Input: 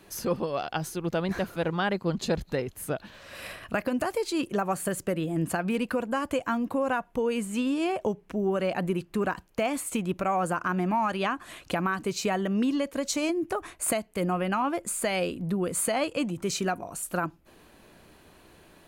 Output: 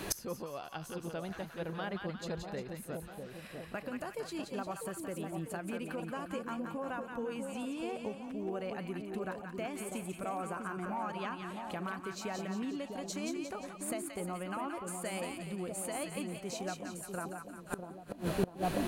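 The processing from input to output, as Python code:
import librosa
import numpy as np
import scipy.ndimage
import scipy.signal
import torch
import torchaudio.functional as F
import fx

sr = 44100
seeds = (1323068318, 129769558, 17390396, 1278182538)

y = fx.echo_split(x, sr, split_hz=910.0, low_ms=648, high_ms=176, feedback_pct=52, wet_db=-4.5)
y = fx.gate_flip(y, sr, shuts_db=-30.0, range_db=-26)
y = y * 10.0 ** (13.5 / 20.0)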